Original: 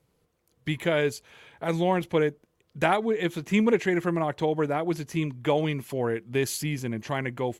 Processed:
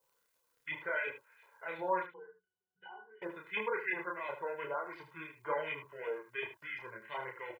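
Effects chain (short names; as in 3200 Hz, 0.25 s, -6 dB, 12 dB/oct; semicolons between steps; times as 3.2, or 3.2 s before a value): switching dead time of 0.15 ms; LFO band-pass saw up 2.8 Hz 860–2300 Hz; spectral gate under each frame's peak -20 dB strong; added noise blue -80 dBFS; comb 2 ms, depth 80%; crackle 50/s -58 dBFS; chorus voices 4, 0.66 Hz, delay 30 ms, depth 2.9 ms; 2.06–3.22 octave resonator F#, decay 0.18 s; echo 76 ms -11 dB; gain +1 dB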